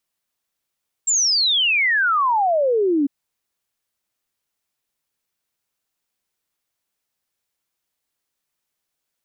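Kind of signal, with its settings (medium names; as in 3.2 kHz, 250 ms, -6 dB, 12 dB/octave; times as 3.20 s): log sweep 7.6 kHz -> 270 Hz 2.00 s -15 dBFS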